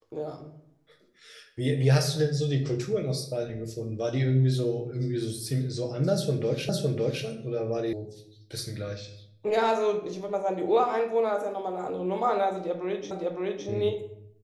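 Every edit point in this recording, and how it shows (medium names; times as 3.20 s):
6.69 s: repeat of the last 0.56 s
7.93 s: sound stops dead
13.11 s: repeat of the last 0.56 s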